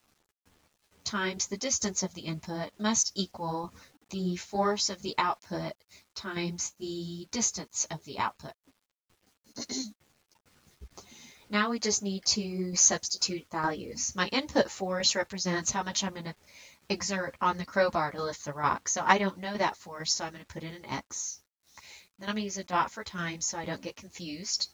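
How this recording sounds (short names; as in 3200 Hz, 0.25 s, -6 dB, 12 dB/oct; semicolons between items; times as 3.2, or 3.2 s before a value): tremolo saw down 2.2 Hz, depth 60%; a quantiser's noise floor 10-bit, dither none; a shimmering, thickened sound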